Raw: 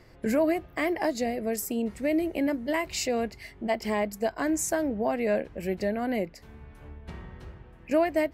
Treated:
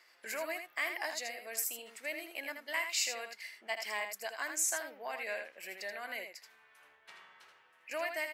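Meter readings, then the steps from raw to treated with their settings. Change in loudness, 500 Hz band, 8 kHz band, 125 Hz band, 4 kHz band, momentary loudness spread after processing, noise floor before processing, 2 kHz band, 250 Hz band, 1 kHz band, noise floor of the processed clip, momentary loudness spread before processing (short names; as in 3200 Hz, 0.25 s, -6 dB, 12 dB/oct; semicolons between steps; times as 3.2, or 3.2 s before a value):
-8.5 dB, -15.5 dB, 0.0 dB, under -35 dB, -0.5 dB, 13 LU, -52 dBFS, -1.5 dB, -27.5 dB, -10.0 dB, -66 dBFS, 18 LU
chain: HPF 1400 Hz 12 dB/oct; on a send: echo 80 ms -7 dB; on the sum: gain -1 dB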